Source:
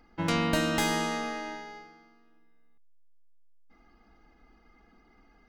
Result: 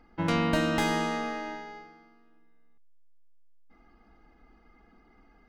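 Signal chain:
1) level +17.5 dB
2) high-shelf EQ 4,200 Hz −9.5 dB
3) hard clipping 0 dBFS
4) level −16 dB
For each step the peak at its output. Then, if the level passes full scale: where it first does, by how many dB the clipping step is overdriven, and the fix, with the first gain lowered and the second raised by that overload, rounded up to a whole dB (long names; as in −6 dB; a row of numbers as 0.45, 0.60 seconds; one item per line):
+4.0, +3.5, 0.0, −16.0 dBFS
step 1, 3.5 dB
step 1 +13.5 dB, step 4 −12 dB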